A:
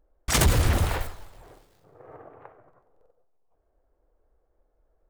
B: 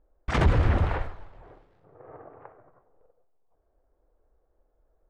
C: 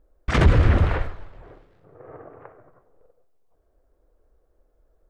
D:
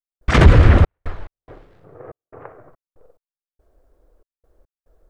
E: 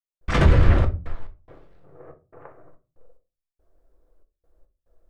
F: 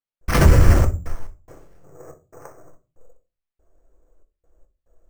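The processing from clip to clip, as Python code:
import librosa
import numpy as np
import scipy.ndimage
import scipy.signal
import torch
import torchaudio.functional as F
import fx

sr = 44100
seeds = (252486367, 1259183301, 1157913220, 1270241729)

y1 = scipy.signal.sosfilt(scipy.signal.butter(2, 2000.0, 'lowpass', fs=sr, output='sos'), x)
y2 = fx.peak_eq(y1, sr, hz=840.0, db=-5.5, octaves=0.66)
y2 = F.gain(torch.from_numpy(y2), 5.5).numpy()
y3 = fx.step_gate(y2, sr, bpm=71, pattern='.xxx.x.xxx.xx.x.', floor_db=-60.0, edge_ms=4.5)
y3 = F.gain(torch.from_numpy(y3), 6.5).numpy()
y4 = fx.room_shoebox(y3, sr, seeds[0], volume_m3=130.0, walls='furnished', distance_m=0.76)
y4 = F.gain(torch.from_numpy(y4), -8.0).numpy()
y5 = np.repeat(scipy.signal.resample_poly(y4, 1, 6), 6)[:len(y4)]
y5 = F.gain(torch.from_numpy(y5), 3.0).numpy()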